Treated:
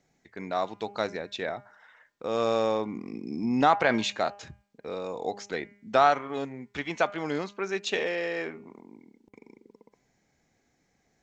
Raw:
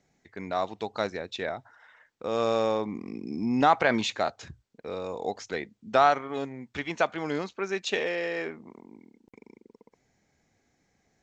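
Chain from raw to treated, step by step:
parametric band 91 Hz −9.5 dB 0.23 octaves
hum removal 202.5 Hz, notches 15

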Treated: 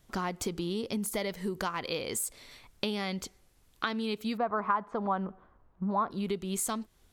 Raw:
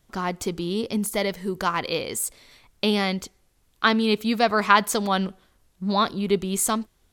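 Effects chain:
downward compressor 6 to 1, threshold −30 dBFS, peak gain reduction 17.5 dB
0:04.37–0:06.11: low-pass with resonance 1,100 Hz, resonance Q 1.9

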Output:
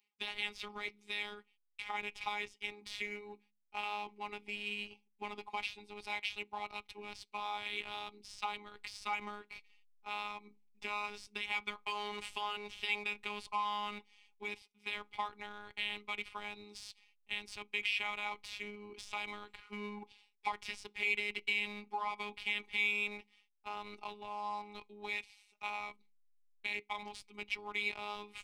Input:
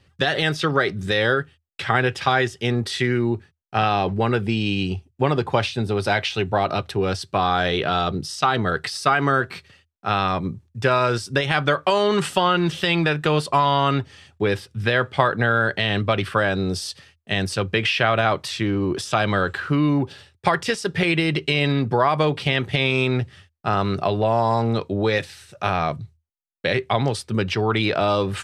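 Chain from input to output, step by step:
formant filter u
mains-hum notches 60/120/180/240 Hz
phases set to zero 207 Hz
first difference
in parallel at −4.5 dB: slack as between gear wheels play −51.5 dBFS
on the sum: level +11.5 dB

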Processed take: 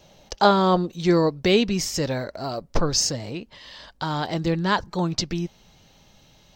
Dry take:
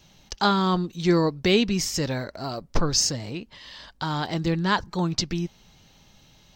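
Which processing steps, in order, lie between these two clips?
parametric band 570 Hz +13 dB 0.98 octaves, from 0:00.94 +4.5 dB

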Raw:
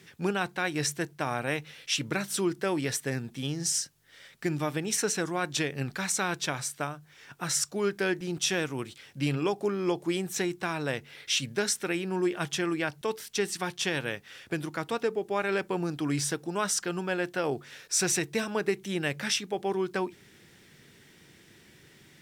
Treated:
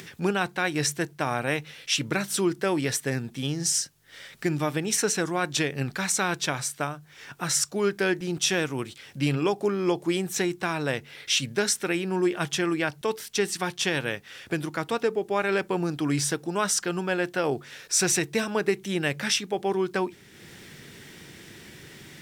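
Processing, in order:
upward compression, threshold −41 dBFS
level +3.5 dB

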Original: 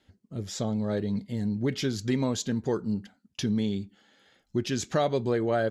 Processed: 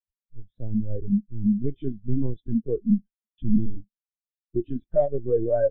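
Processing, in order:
in parallel at −9.5 dB: wrap-around overflow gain 19.5 dB
on the sum: linear-prediction vocoder at 8 kHz pitch kept
every bin expanded away from the loudest bin 2.5 to 1
level +1 dB

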